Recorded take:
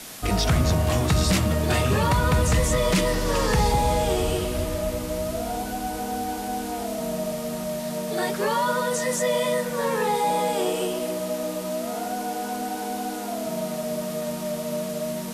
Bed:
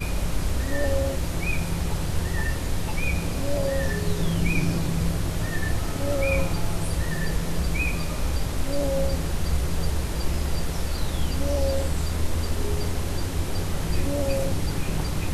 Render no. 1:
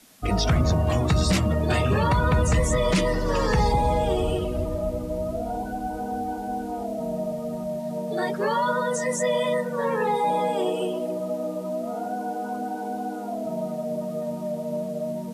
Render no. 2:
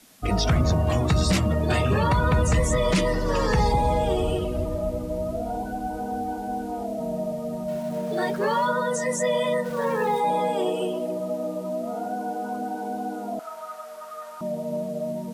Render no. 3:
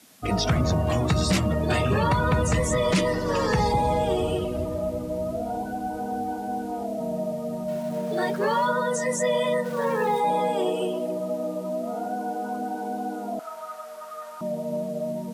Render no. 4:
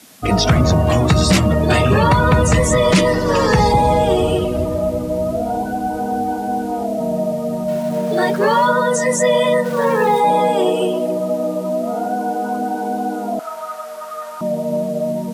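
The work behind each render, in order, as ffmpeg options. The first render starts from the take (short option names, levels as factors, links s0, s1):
-af "afftdn=nr=15:nf=-32"
-filter_complex "[0:a]asettb=1/sr,asplit=3[s0][s1][s2];[s0]atrim=end=7.684[s3];[s1]atrim=start=7.68:end=8.67,asetpts=PTS-STARTPTS,afade=t=in:d=0.004:c=qsin,afade=t=out:st=0.986:d=0.004:c=qsin,aeval=exprs='val(0)+0.5*0.0106*sgn(val(0))':c=same[s4];[s2]atrim=start=8.666[s5];[s3][s4]acrossfade=d=0.004:c1=hsin:c2=qsin[s6];[s6][s5]acrossfade=d=0.004:c1=qsin:c2=hsin,asplit=3[s7][s8][s9];[s7]afade=t=out:st=9.64:d=0.02[s10];[s8]aeval=exprs='val(0)*gte(abs(val(0)),0.0126)':c=same,afade=t=in:st=9.64:d=0.02,afade=t=out:st=10.19:d=0.02[s11];[s9]afade=t=in:st=10.19:d=0.02[s12];[s10][s11][s12]amix=inputs=3:normalize=0,asettb=1/sr,asplit=3[s13][s14][s15];[s13]atrim=end=13.394[s16];[s14]atrim=start=13.39:end=14.41,asetpts=PTS-STARTPTS,afade=t=in:d=0.004:c=qsin,afade=t=out:st=1.016:d=0.004:c=qsin,highpass=f=1300:t=q:w=7.1[s17];[s15]atrim=start=14.406[s18];[s16][s17]acrossfade=d=0.004:c1=hsin:c2=qsin[s19];[s19][s18]acrossfade=d=0.004:c1=qsin:c2=hsin"
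-af "highpass=84"
-af "volume=2.82"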